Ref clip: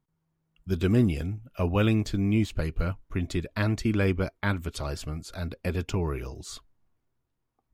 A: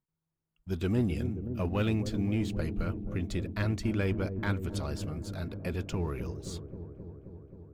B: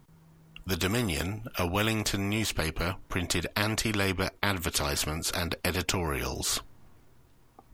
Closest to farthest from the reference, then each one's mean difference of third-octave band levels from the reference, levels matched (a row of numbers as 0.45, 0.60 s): A, B; 4.0, 11.0 dB